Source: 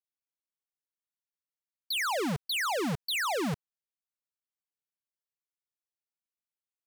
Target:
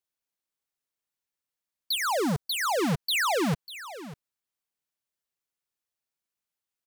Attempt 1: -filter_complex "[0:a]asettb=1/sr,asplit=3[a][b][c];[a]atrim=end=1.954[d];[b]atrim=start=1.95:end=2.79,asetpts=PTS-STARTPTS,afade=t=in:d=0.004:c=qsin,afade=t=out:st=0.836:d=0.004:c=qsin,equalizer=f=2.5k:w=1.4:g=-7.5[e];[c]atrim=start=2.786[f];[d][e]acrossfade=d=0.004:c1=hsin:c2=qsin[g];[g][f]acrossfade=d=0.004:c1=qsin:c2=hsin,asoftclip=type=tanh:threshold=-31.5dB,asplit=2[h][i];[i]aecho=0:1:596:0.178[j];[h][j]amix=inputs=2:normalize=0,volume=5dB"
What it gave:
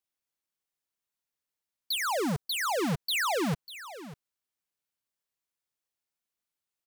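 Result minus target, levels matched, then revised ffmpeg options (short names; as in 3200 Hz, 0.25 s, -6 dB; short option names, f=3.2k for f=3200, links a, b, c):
soft clip: distortion +18 dB
-filter_complex "[0:a]asettb=1/sr,asplit=3[a][b][c];[a]atrim=end=1.954[d];[b]atrim=start=1.95:end=2.79,asetpts=PTS-STARTPTS,afade=t=in:d=0.004:c=qsin,afade=t=out:st=0.836:d=0.004:c=qsin,equalizer=f=2.5k:w=1.4:g=-7.5[e];[c]atrim=start=2.786[f];[d][e]acrossfade=d=0.004:c1=hsin:c2=qsin[g];[g][f]acrossfade=d=0.004:c1=qsin:c2=hsin,asoftclip=type=tanh:threshold=-21.5dB,asplit=2[h][i];[i]aecho=0:1:596:0.178[j];[h][j]amix=inputs=2:normalize=0,volume=5dB"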